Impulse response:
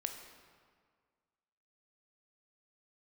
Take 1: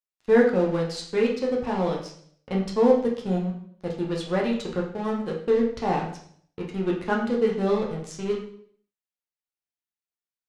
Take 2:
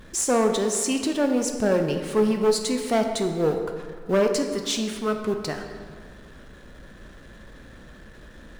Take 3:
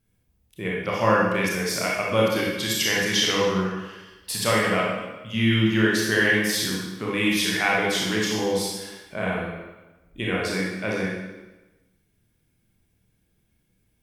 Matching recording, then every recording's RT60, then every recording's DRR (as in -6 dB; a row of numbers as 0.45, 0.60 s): 2; 0.60, 1.8, 1.1 s; -1.5, 4.5, -4.5 dB